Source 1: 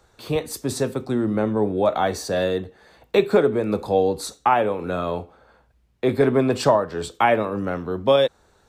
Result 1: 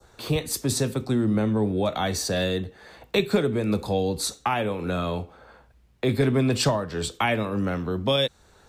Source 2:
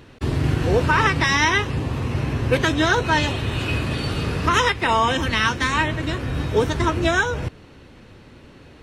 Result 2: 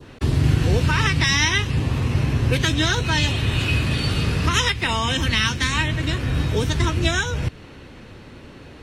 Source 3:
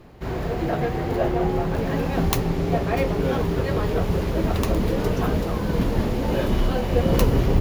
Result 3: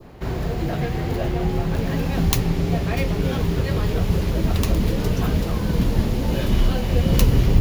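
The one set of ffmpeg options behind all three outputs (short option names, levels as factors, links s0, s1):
-filter_complex "[0:a]adynamicequalizer=threshold=0.02:dfrequency=2200:dqfactor=0.94:tfrequency=2200:tqfactor=0.94:attack=5:release=100:ratio=0.375:range=2:mode=boostabove:tftype=bell,acrossover=split=220|3000[s0][s1][s2];[s1]acompressor=threshold=0.0126:ratio=2[s3];[s0][s3][s2]amix=inputs=3:normalize=0,volume=1.58"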